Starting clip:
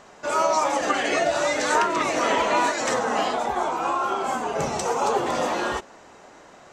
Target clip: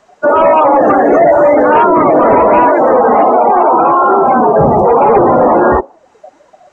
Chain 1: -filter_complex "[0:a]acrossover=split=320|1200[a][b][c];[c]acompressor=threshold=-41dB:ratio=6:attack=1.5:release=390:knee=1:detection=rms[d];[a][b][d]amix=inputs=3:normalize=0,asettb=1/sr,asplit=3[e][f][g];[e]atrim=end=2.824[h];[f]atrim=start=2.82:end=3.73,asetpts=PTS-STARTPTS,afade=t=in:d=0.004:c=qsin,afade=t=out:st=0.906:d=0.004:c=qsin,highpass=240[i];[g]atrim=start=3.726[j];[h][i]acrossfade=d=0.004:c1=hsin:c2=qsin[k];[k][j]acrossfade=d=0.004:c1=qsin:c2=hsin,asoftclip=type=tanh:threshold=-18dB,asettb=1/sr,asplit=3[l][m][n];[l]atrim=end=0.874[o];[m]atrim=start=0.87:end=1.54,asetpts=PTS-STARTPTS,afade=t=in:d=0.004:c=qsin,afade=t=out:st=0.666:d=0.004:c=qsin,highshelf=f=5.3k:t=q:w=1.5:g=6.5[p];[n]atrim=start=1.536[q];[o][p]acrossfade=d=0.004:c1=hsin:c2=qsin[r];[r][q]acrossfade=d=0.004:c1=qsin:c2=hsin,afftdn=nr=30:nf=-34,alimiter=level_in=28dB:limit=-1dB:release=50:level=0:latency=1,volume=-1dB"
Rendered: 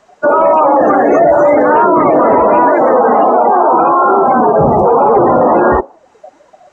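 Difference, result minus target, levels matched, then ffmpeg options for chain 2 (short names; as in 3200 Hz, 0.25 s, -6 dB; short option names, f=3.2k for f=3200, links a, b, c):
soft clip: distortion -7 dB
-filter_complex "[0:a]acrossover=split=320|1200[a][b][c];[c]acompressor=threshold=-41dB:ratio=6:attack=1.5:release=390:knee=1:detection=rms[d];[a][b][d]amix=inputs=3:normalize=0,asettb=1/sr,asplit=3[e][f][g];[e]atrim=end=2.824[h];[f]atrim=start=2.82:end=3.73,asetpts=PTS-STARTPTS,afade=t=in:d=0.004:c=qsin,afade=t=out:st=0.906:d=0.004:c=qsin,highpass=240[i];[g]atrim=start=3.726[j];[h][i]acrossfade=d=0.004:c1=hsin:c2=qsin[k];[k][j]acrossfade=d=0.004:c1=qsin:c2=hsin,asoftclip=type=tanh:threshold=-24dB,asettb=1/sr,asplit=3[l][m][n];[l]atrim=end=0.874[o];[m]atrim=start=0.87:end=1.54,asetpts=PTS-STARTPTS,afade=t=in:d=0.004:c=qsin,afade=t=out:st=0.666:d=0.004:c=qsin,highshelf=f=5.3k:t=q:w=1.5:g=6.5[p];[n]atrim=start=1.536[q];[o][p]acrossfade=d=0.004:c1=hsin:c2=qsin[r];[r][q]acrossfade=d=0.004:c1=qsin:c2=hsin,afftdn=nr=30:nf=-34,alimiter=level_in=28dB:limit=-1dB:release=50:level=0:latency=1,volume=-1dB"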